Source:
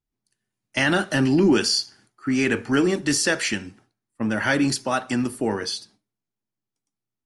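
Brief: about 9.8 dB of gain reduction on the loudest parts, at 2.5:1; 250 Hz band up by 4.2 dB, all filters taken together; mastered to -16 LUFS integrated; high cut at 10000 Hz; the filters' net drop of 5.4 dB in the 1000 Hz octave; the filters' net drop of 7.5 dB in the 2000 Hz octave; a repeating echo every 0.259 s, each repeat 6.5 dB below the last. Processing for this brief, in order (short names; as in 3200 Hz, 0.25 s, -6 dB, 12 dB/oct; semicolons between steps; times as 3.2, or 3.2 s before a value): LPF 10000 Hz; bell 250 Hz +5.5 dB; bell 1000 Hz -5.5 dB; bell 2000 Hz -8 dB; compressor 2.5:1, threshold -26 dBFS; feedback echo 0.259 s, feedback 47%, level -6.5 dB; gain +11 dB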